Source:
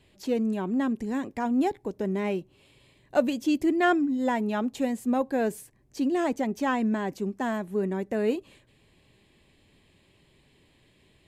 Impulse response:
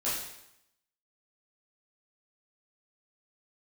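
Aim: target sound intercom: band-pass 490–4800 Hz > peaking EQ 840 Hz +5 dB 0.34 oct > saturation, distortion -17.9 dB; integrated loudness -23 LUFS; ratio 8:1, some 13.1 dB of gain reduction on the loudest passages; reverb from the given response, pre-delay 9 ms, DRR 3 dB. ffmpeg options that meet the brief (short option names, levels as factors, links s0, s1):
-filter_complex "[0:a]acompressor=threshold=0.0316:ratio=8,asplit=2[s0][s1];[1:a]atrim=start_sample=2205,adelay=9[s2];[s1][s2]afir=irnorm=-1:irlink=0,volume=0.316[s3];[s0][s3]amix=inputs=2:normalize=0,highpass=490,lowpass=4800,equalizer=f=840:t=o:w=0.34:g=5,asoftclip=threshold=0.0422,volume=6.31"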